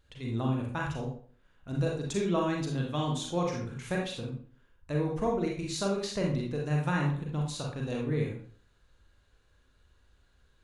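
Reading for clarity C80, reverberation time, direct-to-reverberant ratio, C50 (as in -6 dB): 8.5 dB, 0.50 s, -1.5 dB, 3.5 dB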